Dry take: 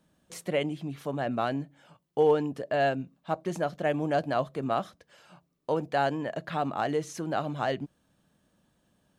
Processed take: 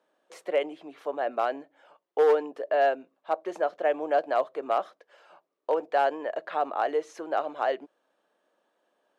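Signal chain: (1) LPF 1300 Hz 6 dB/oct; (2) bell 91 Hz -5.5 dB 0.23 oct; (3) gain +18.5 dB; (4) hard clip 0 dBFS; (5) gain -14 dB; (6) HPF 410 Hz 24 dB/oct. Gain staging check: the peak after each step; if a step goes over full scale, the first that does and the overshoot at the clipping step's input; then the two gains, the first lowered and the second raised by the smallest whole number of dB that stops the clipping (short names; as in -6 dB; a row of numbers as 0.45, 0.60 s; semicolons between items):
-13.5, -13.5, +5.0, 0.0, -14.0, -13.0 dBFS; step 3, 5.0 dB; step 3 +13.5 dB, step 5 -9 dB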